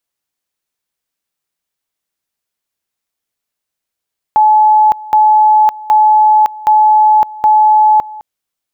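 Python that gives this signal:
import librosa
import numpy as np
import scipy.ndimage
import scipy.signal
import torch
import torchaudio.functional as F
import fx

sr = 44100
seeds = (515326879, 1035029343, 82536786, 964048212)

y = fx.two_level_tone(sr, hz=857.0, level_db=-4.5, drop_db=20.5, high_s=0.56, low_s=0.21, rounds=5)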